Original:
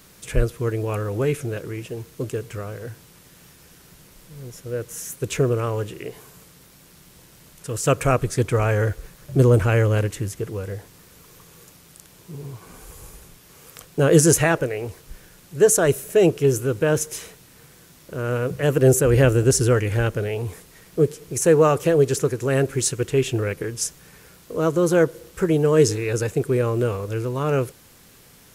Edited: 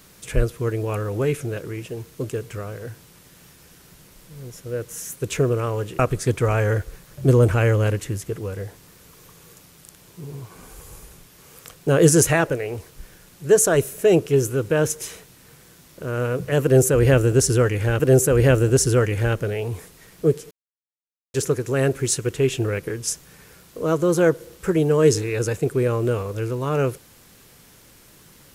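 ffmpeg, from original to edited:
ffmpeg -i in.wav -filter_complex "[0:a]asplit=5[link_01][link_02][link_03][link_04][link_05];[link_01]atrim=end=5.992[link_06];[link_02]atrim=start=8.098:end=20.112[link_07];[link_03]atrim=start=18.738:end=21.25,asetpts=PTS-STARTPTS,afade=type=out:start_time=2.508:duration=0.004:curve=hsin[link_08];[link_04]atrim=start=21.25:end=22.08,asetpts=PTS-STARTPTS,volume=0[link_09];[link_05]atrim=start=22.08,asetpts=PTS-STARTPTS,afade=type=in:duration=0.004:curve=hsin[link_10];[link_06][link_07]acrossfade=duration=0.004:curve1=hsin:curve2=hsin[link_11];[link_08][link_09][link_10]concat=n=3:v=0:a=1[link_12];[link_11][link_12]acrossfade=duration=0.004:curve1=hsin:curve2=hsin" out.wav

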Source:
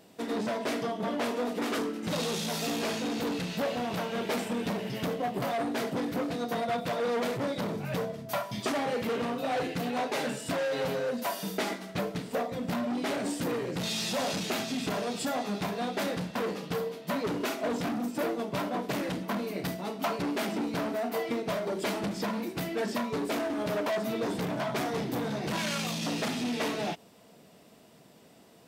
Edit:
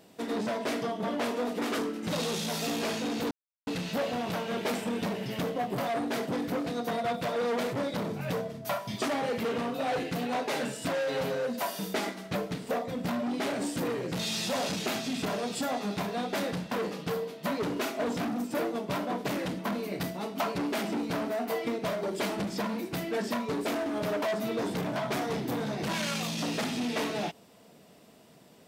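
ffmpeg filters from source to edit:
ffmpeg -i in.wav -filter_complex "[0:a]asplit=2[link_01][link_02];[link_01]atrim=end=3.31,asetpts=PTS-STARTPTS,afade=type=out:start_time=3.306:duration=0.004:curve=hsin,apad=pad_dur=0.36[link_03];[link_02]atrim=start=3.31,asetpts=PTS-STARTPTS,afade=type=in:duration=0.004:curve=hsin[link_04];[link_03][link_04]concat=n=2:v=0:a=1" out.wav

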